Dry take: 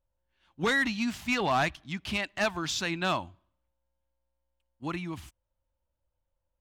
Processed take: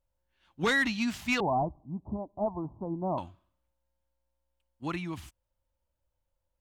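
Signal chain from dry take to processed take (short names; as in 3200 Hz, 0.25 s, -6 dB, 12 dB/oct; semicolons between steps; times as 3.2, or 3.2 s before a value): 1.4–3.18 steep low-pass 1000 Hz 72 dB/oct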